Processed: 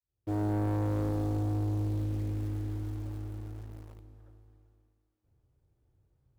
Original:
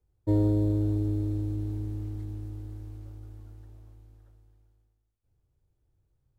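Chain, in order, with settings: opening faded in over 0.99 s; HPF 66 Hz 6 dB/oct; in parallel at -9 dB: bit-crush 8-bit; on the sum: soft clip -32.5 dBFS, distortion -7 dB; on a send: multi-head echo 0.128 s, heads first and third, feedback 57%, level -23 dB; on the sum: mismatched tape noise reduction decoder only; gain +5 dB

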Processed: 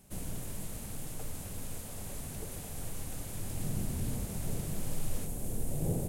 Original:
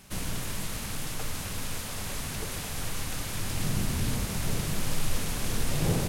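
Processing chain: band shelf 2400 Hz -9 dB 2.9 oct, from 5.25 s -15.5 dB; gain -5.5 dB

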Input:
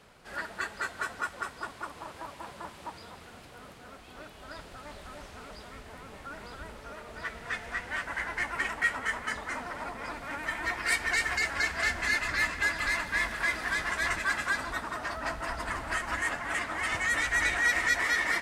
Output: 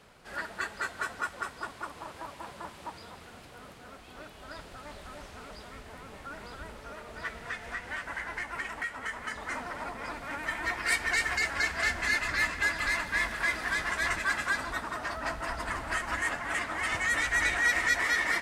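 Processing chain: 7.36–9.41 compressor 4:1, threshold -33 dBFS, peak gain reduction 10 dB

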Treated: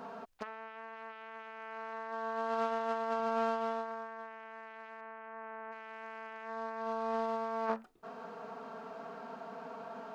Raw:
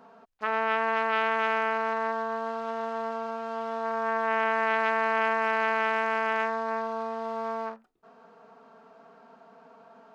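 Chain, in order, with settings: 1.59–3.2 low shelf 280 Hz -4 dB; 5–5.71 LPF 2200 Hz -> 1300 Hz 12 dB/oct; negative-ratio compressor -36 dBFS, ratio -0.5; gain -1 dB

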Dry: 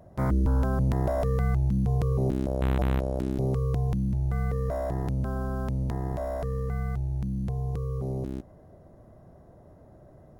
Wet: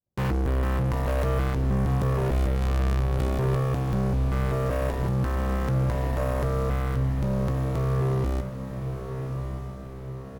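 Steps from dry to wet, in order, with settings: expander -38 dBFS; bell 660 Hz -14.5 dB 0.22 oct; sample leveller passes 5; doubler 17 ms -12.5 dB; on a send: diffused feedback echo 1.208 s, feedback 53%, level -7.5 dB; on the sum: gain -6.5 dB

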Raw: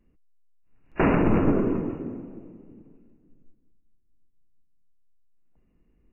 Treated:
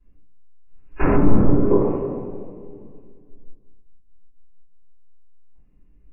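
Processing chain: shoebox room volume 49 m³, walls mixed, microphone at 3.2 m; spectral gain 1.71–3.89, 360–1200 Hz +11 dB; treble ducked by the level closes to 1100 Hz, closed at 3.5 dBFS; gain -12.5 dB

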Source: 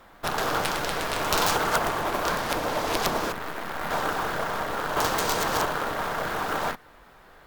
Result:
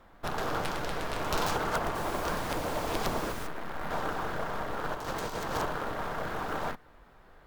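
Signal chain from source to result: tilt -1.5 dB/oct; 1.94–3.46 added noise pink -36 dBFS; 4.84–5.55 negative-ratio compressor -27 dBFS, ratio -0.5; gain -6.5 dB

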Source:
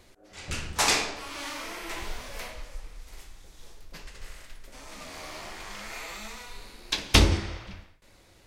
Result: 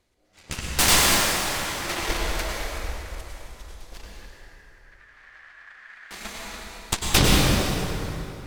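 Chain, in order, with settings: AGC gain up to 10 dB; added harmonics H 3 -13 dB, 8 -10 dB, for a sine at -0.5 dBFS; 4.06–6.11 band-pass 1700 Hz, Q 8; plate-style reverb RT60 3.3 s, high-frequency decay 0.65×, pre-delay 85 ms, DRR -3 dB; gain -4.5 dB

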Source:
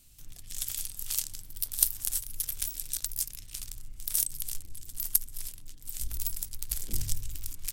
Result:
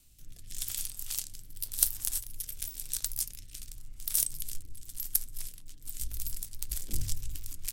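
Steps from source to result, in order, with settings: flange 0.86 Hz, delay 2.1 ms, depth 8.4 ms, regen -82%; rotary speaker horn 0.9 Hz, later 6.7 Hz, at 4.61; gain +5 dB

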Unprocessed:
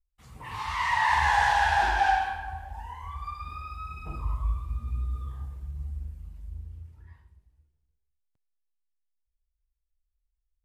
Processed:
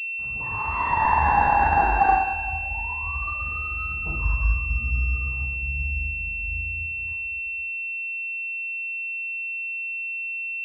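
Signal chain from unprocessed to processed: pulse-width modulation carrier 2700 Hz; gain +6 dB

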